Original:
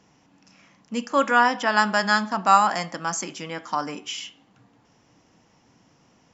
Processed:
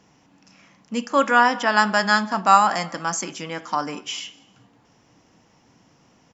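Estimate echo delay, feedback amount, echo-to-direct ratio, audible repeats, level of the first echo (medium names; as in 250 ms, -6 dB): 195 ms, 31%, -22.5 dB, 2, -23.0 dB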